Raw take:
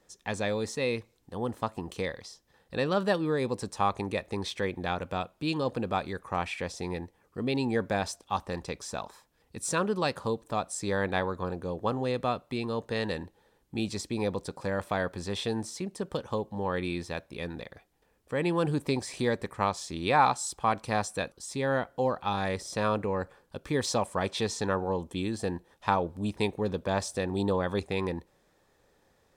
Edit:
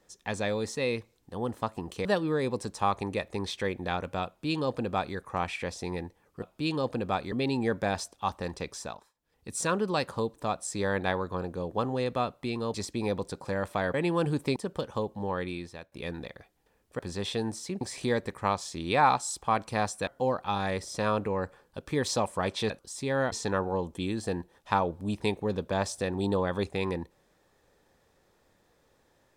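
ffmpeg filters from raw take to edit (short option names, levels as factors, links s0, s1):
-filter_complex "[0:a]asplit=15[s0][s1][s2][s3][s4][s5][s6][s7][s8][s9][s10][s11][s12][s13][s14];[s0]atrim=end=2.052[s15];[s1]atrim=start=3.028:end=7.402[s16];[s2]atrim=start=5.238:end=6.142[s17];[s3]atrim=start=7.398:end=9.21,asetpts=PTS-STARTPTS,afade=t=out:st=1.452:d=0.36:silence=0.0630957[s18];[s4]atrim=start=9.21:end=9.22,asetpts=PTS-STARTPTS,volume=0.0631[s19];[s5]atrim=start=9.22:end=12.822,asetpts=PTS-STARTPTS,afade=t=in:d=0.36:silence=0.0630957[s20];[s6]atrim=start=13.898:end=15.102[s21];[s7]atrim=start=18.348:end=18.972[s22];[s8]atrim=start=15.918:end=17.28,asetpts=PTS-STARTPTS,afade=t=out:st=0.672:d=0.69:silence=0.211349[s23];[s9]atrim=start=17.28:end=18.352,asetpts=PTS-STARTPTS,afade=t=in:d=0.004:c=hsin:silence=0.211349[s24];[s10]atrim=start=15.098:end=15.922[s25];[s11]atrim=start=18.968:end=21.232[s26];[s12]atrim=start=21.848:end=24.482[s27];[s13]atrim=start=21.228:end=21.852[s28];[s14]atrim=start=24.478[s29];[s15][s16]acrossfade=d=0.004:c1=hsin:c2=hsin[s30];[s30][s17]acrossfade=d=0.004:c1=hsin:c2=hsin[s31];[s18][s19][s20]concat=n=3:v=0:a=1[s32];[s31][s32]acrossfade=d=0.004:c1=hsin:c2=hsin[s33];[s33][s21]acrossfade=d=0.004:c1=hsin:c2=hsin[s34];[s34][s22]acrossfade=d=0.004:c1=hsin:c2=hsin[s35];[s23][s24]concat=n=2:v=0:a=1[s36];[s35][s36]acrossfade=d=0.004:c1=hsin:c2=hsin[s37];[s37][s25]acrossfade=d=0.004:c1=hsin:c2=hsin[s38];[s38][s26]acrossfade=d=0.004:c1=hsin:c2=hsin[s39];[s39][s27]acrossfade=d=0.004:c1=hsin:c2=hsin[s40];[s40][s28]acrossfade=d=0.004:c1=hsin:c2=hsin[s41];[s41][s29]acrossfade=d=0.004:c1=hsin:c2=hsin"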